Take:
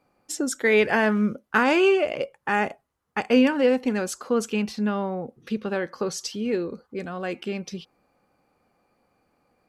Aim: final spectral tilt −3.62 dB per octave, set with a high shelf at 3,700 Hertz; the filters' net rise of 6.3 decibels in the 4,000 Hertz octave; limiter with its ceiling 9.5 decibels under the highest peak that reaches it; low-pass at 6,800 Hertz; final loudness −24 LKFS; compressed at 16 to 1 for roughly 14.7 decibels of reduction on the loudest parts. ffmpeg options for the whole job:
ffmpeg -i in.wav -af "lowpass=6800,highshelf=frequency=3700:gain=9,equalizer=frequency=4000:width_type=o:gain=3.5,acompressor=threshold=-28dB:ratio=16,volume=10dB,alimiter=limit=-13.5dB:level=0:latency=1" out.wav

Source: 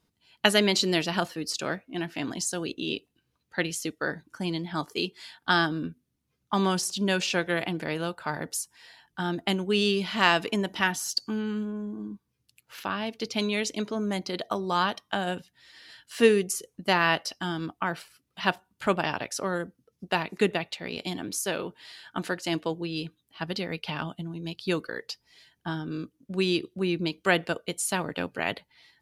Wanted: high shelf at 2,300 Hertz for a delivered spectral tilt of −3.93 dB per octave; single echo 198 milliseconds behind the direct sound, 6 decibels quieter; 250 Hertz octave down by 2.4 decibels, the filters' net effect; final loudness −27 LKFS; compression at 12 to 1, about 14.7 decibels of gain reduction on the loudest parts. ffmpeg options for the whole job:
ffmpeg -i in.wav -af "equalizer=frequency=250:width_type=o:gain=-3.5,highshelf=frequency=2300:gain=-5,acompressor=threshold=-30dB:ratio=12,aecho=1:1:198:0.501,volume=9dB" out.wav

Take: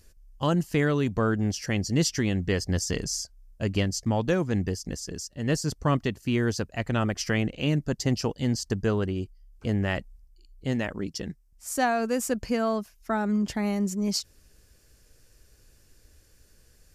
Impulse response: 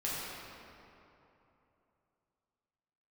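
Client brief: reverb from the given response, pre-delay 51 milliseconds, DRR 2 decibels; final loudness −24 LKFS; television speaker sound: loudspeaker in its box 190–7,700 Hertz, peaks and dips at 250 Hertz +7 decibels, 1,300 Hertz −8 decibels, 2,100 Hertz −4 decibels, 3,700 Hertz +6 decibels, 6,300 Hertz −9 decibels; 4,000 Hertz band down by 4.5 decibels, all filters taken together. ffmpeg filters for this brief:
-filter_complex "[0:a]equalizer=frequency=4000:width_type=o:gain=-6.5,asplit=2[link_01][link_02];[1:a]atrim=start_sample=2205,adelay=51[link_03];[link_02][link_03]afir=irnorm=-1:irlink=0,volume=-7.5dB[link_04];[link_01][link_04]amix=inputs=2:normalize=0,highpass=frequency=190:width=0.5412,highpass=frequency=190:width=1.3066,equalizer=frequency=250:width_type=q:width=4:gain=7,equalizer=frequency=1300:width_type=q:width=4:gain=-8,equalizer=frequency=2100:width_type=q:width=4:gain=-4,equalizer=frequency=3700:width_type=q:width=4:gain=6,equalizer=frequency=6300:width_type=q:width=4:gain=-9,lowpass=frequency=7700:width=0.5412,lowpass=frequency=7700:width=1.3066,volume=2dB"

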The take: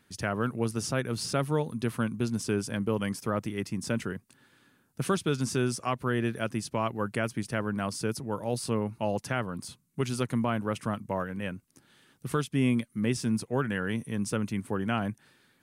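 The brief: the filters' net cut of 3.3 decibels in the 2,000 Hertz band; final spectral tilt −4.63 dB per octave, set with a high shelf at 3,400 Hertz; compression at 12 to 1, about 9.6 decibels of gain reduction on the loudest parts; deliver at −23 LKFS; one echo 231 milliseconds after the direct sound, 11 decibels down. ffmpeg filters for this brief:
ffmpeg -i in.wav -af "equalizer=frequency=2000:width_type=o:gain=-6.5,highshelf=frequency=3400:gain=6,acompressor=threshold=-32dB:ratio=12,aecho=1:1:231:0.282,volume=14.5dB" out.wav

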